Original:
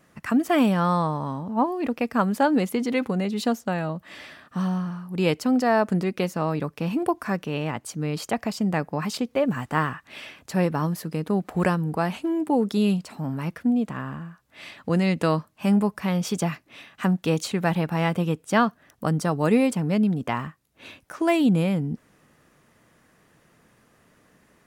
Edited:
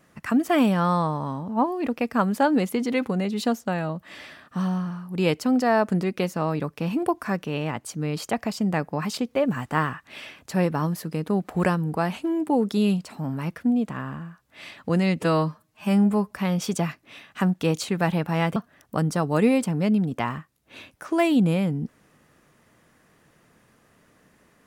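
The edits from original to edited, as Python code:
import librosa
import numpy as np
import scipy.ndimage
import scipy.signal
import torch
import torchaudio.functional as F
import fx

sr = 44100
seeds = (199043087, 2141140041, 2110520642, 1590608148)

y = fx.edit(x, sr, fx.stretch_span(start_s=15.2, length_s=0.74, factor=1.5),
    fx.cut(start_s=18.19, length_s=0.46), tone=tone)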